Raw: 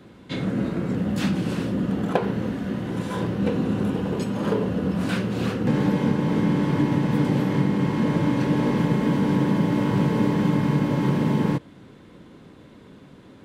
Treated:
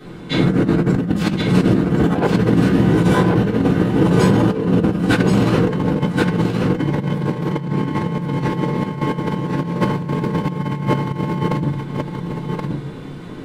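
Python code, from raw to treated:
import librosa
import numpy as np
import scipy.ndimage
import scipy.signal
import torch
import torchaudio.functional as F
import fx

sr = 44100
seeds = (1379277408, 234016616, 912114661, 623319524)

p1 = fx.room_shoebox(x, sr, seeds[0], volume_m3=130.0, walls='furnished', distance_m=3.6)
p2 = fx.over_compress(p1, sr, threshold_db=-16.0, ratio=-0.5)
p3 = fx.peak_eq(p2, sr, hz=210.0, db=-2.5, octaves=0.43)
p4 = p3 + fx.echo_single(p3, sr, ms=1076, db=-3.5, dry=0)
y = p4 * librosa.db_to_amplitude(-1.0)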